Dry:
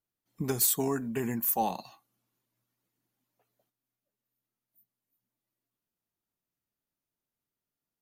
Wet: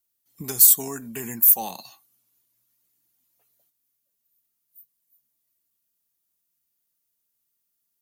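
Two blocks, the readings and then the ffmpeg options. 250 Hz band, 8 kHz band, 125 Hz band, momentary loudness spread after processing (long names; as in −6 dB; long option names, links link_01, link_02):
−3.5 dB, +11.0 dB, −4.0 dB, 20 LU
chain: -filter_complex "[0:a]asplit=2[link_01][link_02];[link_02]alimiter=level_in=0.5dB:limit=-24dB:level=0:latency=1:release=206,volume=-0.5dB,volume=-2.5dB[link_03];[link_01][link_03]amix=inputs=2:normalize=0,crystalizer=i=5:c=0,volume=-7.5dB"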